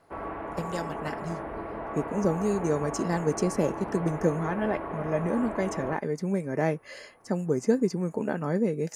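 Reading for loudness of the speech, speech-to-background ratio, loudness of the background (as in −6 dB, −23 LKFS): −29.5 LKFS, 6.5 dB, −36.0 LKFS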